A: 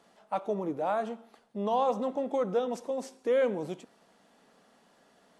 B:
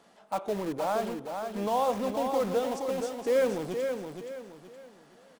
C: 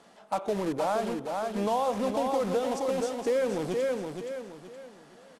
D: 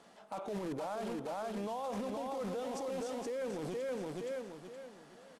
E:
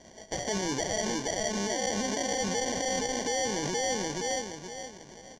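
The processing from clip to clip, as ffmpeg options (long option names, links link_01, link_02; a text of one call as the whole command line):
ffmpeg -i in.wav -filter_complex "[0:a]asplit=2[link_01][link_02];[link_02]aeval=exprs='(mod(42.2*val(0)+1,2)-1)/42.2':channel_layout=same,volume=-9dB[link_03];[link_01][link_03]amix=inputs=2:normalize=0,aecho=1:1:471|942|1413|1884:0.501|0.17|0.0579|0.0197" out.wav
ffmpeg -i in.wav -af "lowpass=frequency=12000:width=0.5412,lowpass=frequency=12000:width=1.3066,acompressor=threshold=-27dB:ratio=6,volume=3.5dB" out.wav
ffmpeg -i in.wav -af "alimiter=level_in=4.5dB:limit=-24dB:level=0:latency=1:release=19,volume=-4.5dB,volume=-3.5dB" out.wav
ffmpeg -i in.wav -af "acrusher=samples=34:mix=1:aa=0.000001,lowpass=frequency=6100:width_type=q:width=5.7,volume=7dB" out.wav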